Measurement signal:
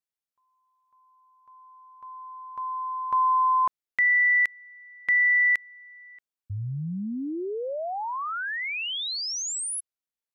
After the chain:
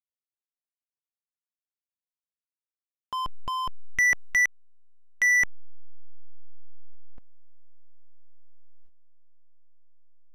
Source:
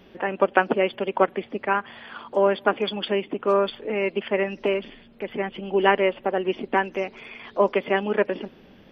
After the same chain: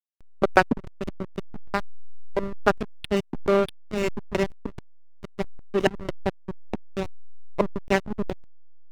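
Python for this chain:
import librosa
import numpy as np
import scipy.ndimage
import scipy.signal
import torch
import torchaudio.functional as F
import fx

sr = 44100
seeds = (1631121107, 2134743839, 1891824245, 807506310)

y = fx.filter_lfo_lowpass(x, sr, shape='square', hz=2.3, low_hz=250.0, high_hz=3200.0, q=2.3)
y = fx.backlash(y, sr, play_db=-14.0)
y = y * 10.0 ** (1.5 / 20.0)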